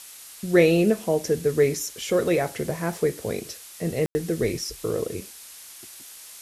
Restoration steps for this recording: room tone fill 4.06–4.15 s; noise print and reduce 24 dB

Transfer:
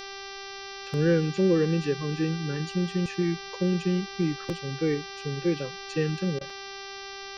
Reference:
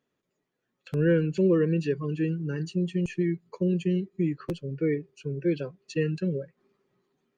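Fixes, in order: de-hum 393.3 Hz, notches 15; interpolate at 6.50 s, 3.2 ms; interpolate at 6.39 s, 19 ms; expander -32 dBFS, range -21 dB

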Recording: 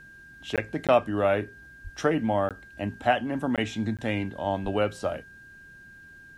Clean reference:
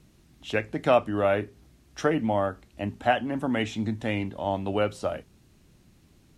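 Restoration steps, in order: band-stop 1.6 kHz, Q 30; 1.83–1.95 s: high-pass 140 Hz 24 dB/octave; 4.63–4.75 s: high-pass 140 Hz 24 dB/octave; interpolate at 0.56/0.87/2.49/3.56/3.97 s, 17 ms

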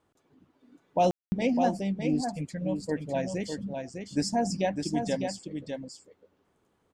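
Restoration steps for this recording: room tone fill 1.11–1.32 s; inverse comb 604 ms -6 dB

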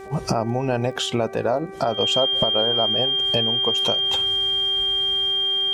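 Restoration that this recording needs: de-click; de-hum 387.7 Hz, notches 6; band-stop 3.2 kHz, Q 30

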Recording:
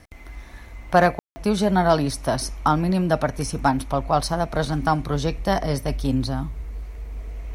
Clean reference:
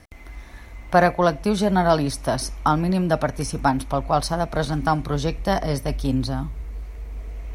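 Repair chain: clip repair -6.5 dBFS; room tone fill 1.19–1.36 s

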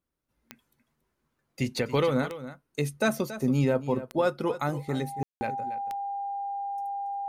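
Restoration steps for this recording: de-click; band-stop 800 Hz, Q 30; room tone fill 5.23–5.41 s; inverse comb 279 ms -13.5 dB

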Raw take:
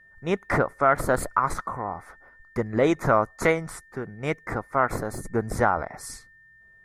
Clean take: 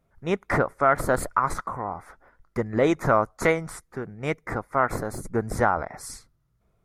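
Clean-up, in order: band-stop 1.8 kHz, Q 30

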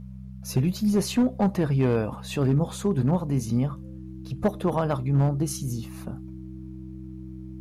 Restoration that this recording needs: clip repair -15.5 dBFS; de-hum 64.2 Hz, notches 3; band-stop 320 Hz, Q 30

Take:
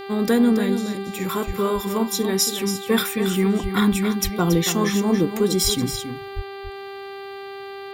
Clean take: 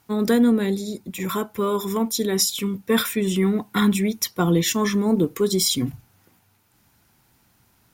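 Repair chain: de-hum 394.5 Hz, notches 12; de-plosive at 1.46/3.62/4.23/5.63/6.35 s; inverse comb 279 ms -9 dB

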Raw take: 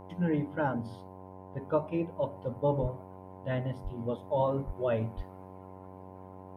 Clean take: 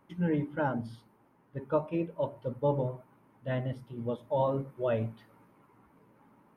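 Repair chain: de-hum 93.8 Hz, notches 11; de-plosive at 2.81/3.83/4.66/5.16 s

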